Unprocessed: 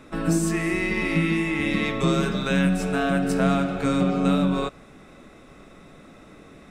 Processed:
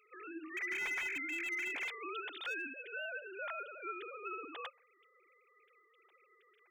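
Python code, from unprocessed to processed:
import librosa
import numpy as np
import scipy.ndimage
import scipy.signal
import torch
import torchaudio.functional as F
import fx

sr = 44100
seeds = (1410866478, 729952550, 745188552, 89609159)

y = fx.sine_speech(x, sr)
y = np.diff(y, prepend=0.0)
y = fx.slew_limit(y, sr, full_power_hz=41.0)
y = y * 10.0 ** (-1.5 / 20.0)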